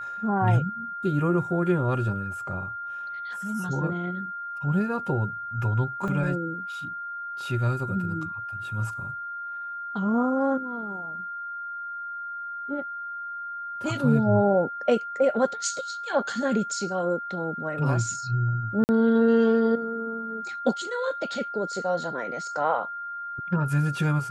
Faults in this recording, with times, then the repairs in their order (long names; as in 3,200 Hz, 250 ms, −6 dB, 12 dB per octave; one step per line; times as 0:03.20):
whistle 1,400 Hz −32 dBFS
0:06.08: drop-out 2 ms
0:18.84–0:18.89: drop-out 49 ms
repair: notch filter 1,400 Hz, Q 30
repair the gap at 0:06.08, 2 ms
repair the gap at 0:18.84, 49 ms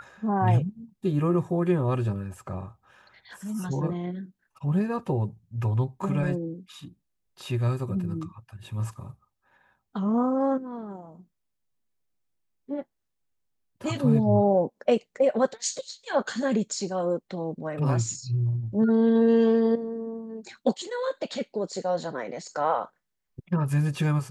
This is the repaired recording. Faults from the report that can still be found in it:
none of them is left